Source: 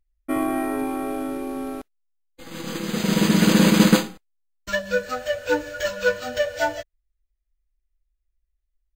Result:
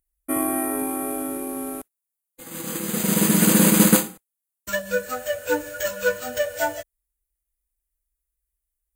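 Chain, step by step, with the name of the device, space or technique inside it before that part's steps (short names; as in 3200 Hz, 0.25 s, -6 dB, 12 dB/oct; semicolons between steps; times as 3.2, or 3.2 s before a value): budget condenser microphone (HPF 70 Hz 6 dB/oct; resonant high shelf 7000 Hz +13.5 dB, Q 1.5); gain -1 dB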